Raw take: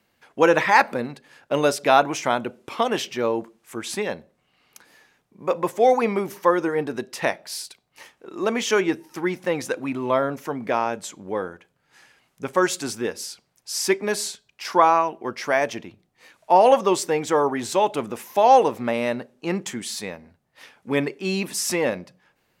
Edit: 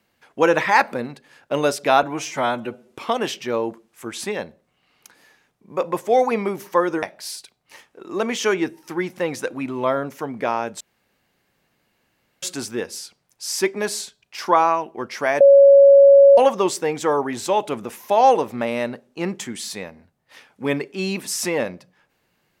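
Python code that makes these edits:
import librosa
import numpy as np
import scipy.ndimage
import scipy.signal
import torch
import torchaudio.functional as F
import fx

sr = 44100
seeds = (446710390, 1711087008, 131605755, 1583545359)

y = fx.edit(x, sr, fx.stretch_span(start_s=2.03, length_s=0.59, factor=1.5),
    fx.cut(start_s=6.73, length_s=0.56),
    fx.room_tone_fill(start_s=11.07, length_s=1.62),
    fx.bleep(start_s=15.67, length_s=0.97, hz=557.0, db=-6.0), tone=tone)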